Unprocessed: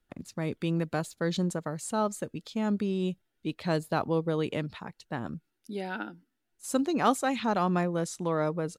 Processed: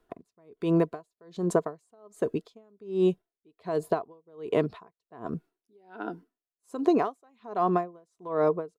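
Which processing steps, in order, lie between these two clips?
small resonant body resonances 430/680/1000 Hz, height 18 dB, ringing for 30 ms; compressor 12:1, threshold -19 dBFS, peak gain reduction 14.5 dB; dB-linear tremolo 1.3 Hz, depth 38 dB; gain +2.5 dB

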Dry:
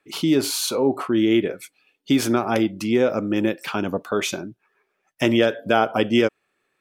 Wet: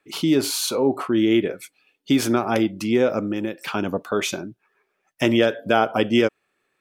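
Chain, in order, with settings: 3.26–3.67 compressor, threshold -22 dBFS, peak gain reduction 6.5 dB

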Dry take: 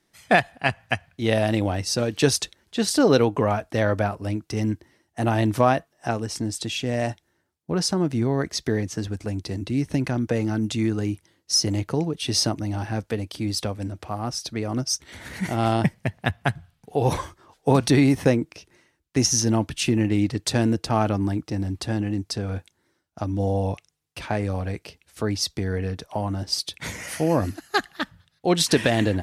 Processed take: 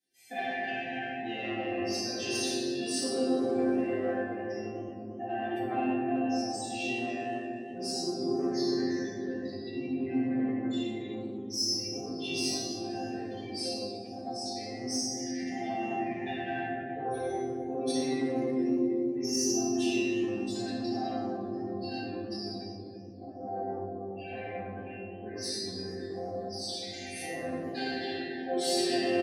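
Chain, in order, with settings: bin magnitudes rounded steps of 15 dB; elliptic band-stop 760–1600 Hz; limiter -14 dBFS, peak gain reduction 8.5 dB; on a send: echo 97 ms -7.5 dB; on the sum: shoebox room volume 190 m³, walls hard, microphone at 1.9 m; spectral gate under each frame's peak -30 dB strong; soft clip -4 dBFS, distortion -19 dB; HPF 110 Hz; high shelf 5600 Hz +10 dB; resonator bank C4 sus4, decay 0.62 s; warbling echo 0.12 s, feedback 69%, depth 209 cents, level -20 dB; gain +4.5 dB

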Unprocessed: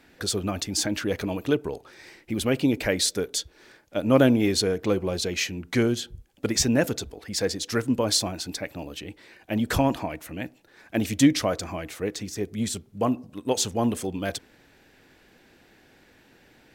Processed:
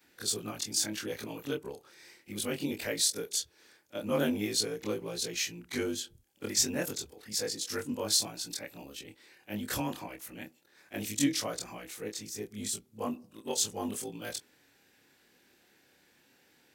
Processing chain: short-time reversal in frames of 57 ms; HPF 150 Hz 6 dB/oct; high shelf 4300 Hz +11 dB; notch 650 Hz, Q 12; gain -7 dB

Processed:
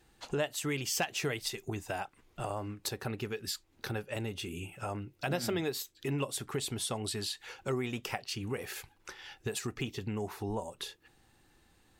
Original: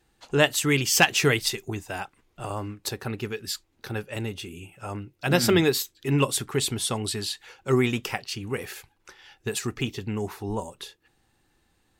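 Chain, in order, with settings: dynamic EQ 650 Hz, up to +6 dB, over -41 dBFS, Q 1.9; compressor 3:1, threshold -38 dBFS, peak gain reduction 19.5 dB; gain +2 dB

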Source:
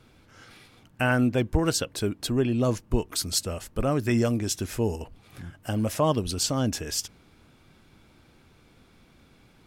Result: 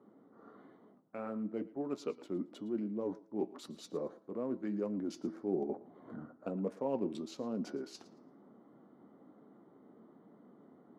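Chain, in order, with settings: Wiener smoothing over 15 samples; flange 1.2 Hz, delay 4 ms, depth 4.6 ms, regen -65%; reverse; compressor 8:1, threshold -39 dBFS, peak gain reduction 18 dB; reverse; HPF 260 Hz 24 dB/oct; high shelf 4900 Hz -11 dB; thinning echo 99 ms, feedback 22%, high-pass 420 Hz, level -18 dB; vocal rider 2 s; tilt shelf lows +7.5 dB, about 1300 Hz; de-hum 372.4 Hz, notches 19; varispeed -12%; gain +2 dB

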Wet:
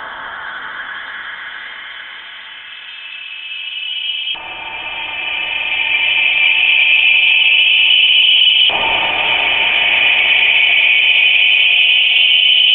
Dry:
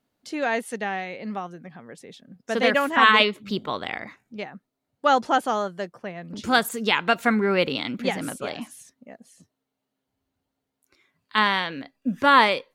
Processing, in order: Paulstretch 12×, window 1.00 s, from 4.4; LFO band-pass saw down 0.23 Hz 810–2800 Hz; inverted band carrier 3800 Hz; maximiser +21 dB; gain -1 dB

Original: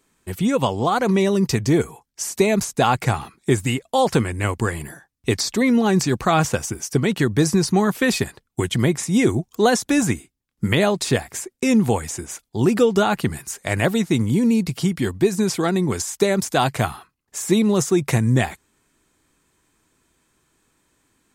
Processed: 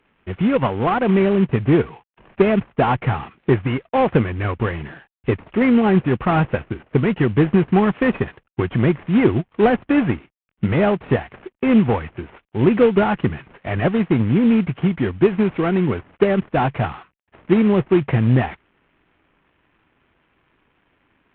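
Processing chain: CVSD 16 kbps; added harmonics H 3 -23 dB, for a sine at -6 dBFS; gain +4.5 dB

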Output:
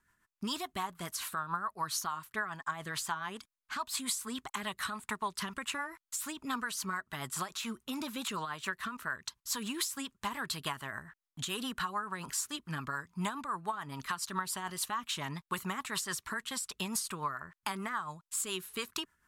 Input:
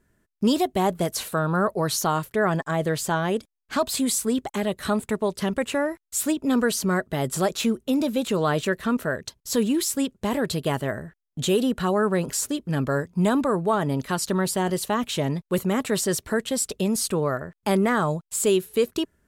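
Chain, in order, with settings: resonant low shelf 740 Hz -11.5 dB, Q 3; compressor 6:1, threshold -30 dBFS, peak gain reduction 14 dB; rotary speaker horn 7 Hz

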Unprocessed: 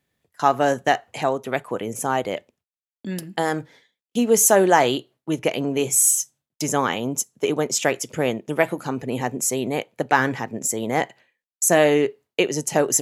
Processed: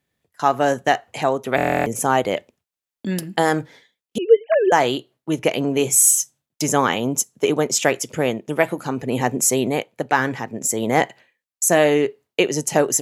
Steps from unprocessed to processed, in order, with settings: 4.18–4.72 sine-wave speech; AGC gain up to 8 dB; stuck buffer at 1.56, samples 1024, times 12; gain -1 dB

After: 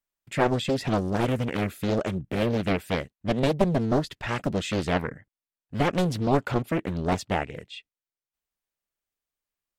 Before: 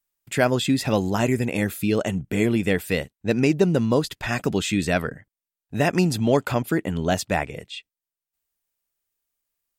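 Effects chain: high shelf 6100 Hz -10 dB; Doppler distortion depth 0.98 ms; gain -3 dB

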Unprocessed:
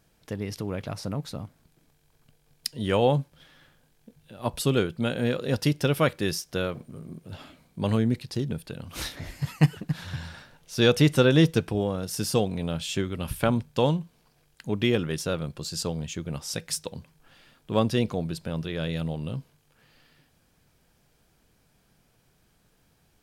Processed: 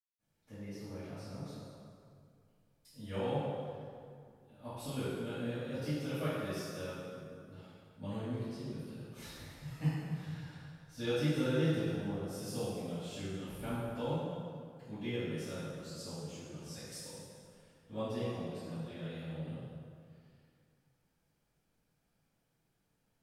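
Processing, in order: 1.38–2.7 compressor 4:1, threshold -42 dBFS, peak gain reduction 15 dB; reverb RT60 2.3 s, pre-delay 0.189 s, DRR -60 dB; gain -3.5 dB

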